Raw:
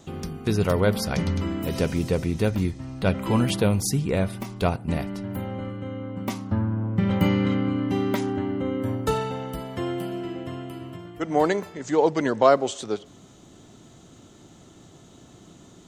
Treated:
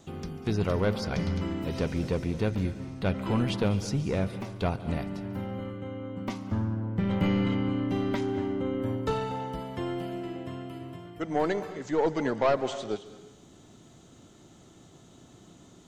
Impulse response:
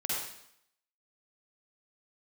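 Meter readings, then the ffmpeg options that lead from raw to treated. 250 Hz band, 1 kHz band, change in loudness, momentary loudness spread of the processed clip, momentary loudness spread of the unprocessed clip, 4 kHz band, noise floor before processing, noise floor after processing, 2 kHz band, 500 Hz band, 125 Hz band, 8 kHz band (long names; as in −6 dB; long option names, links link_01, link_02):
−4.5 dB, −6.0 dB, −5.0 dB, 11 LU, 12 LU, −5.5 dB, −51 dBFS, −54 dBFS, −5.0 dB, −5.5 dB, −4.5 dB, −11.5 dB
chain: -filter_complex "[0:a]aeval=exprs='(tanh(5.01*val(0)+0.3)-tanh(0.3))/5.01':channel_layout=same,acrossover=split=6200[link_01][link_02];[link_02]acompressor=threshold=-59dB:ratio=4:attack=1:release=60[link_03];[link_01][link_03]amix=inputs=2:normalize=0,asplit=2[link_04][link_05];[1:a]atrim=start_sample=2205,adelay=143[link_06];[link_05][link_06]afir=irnorm=-1:irlink=0,volume=-18dB[link_07];[link_04][link_07]amix=inputs=2:normalize=0,volume=-3.5dB"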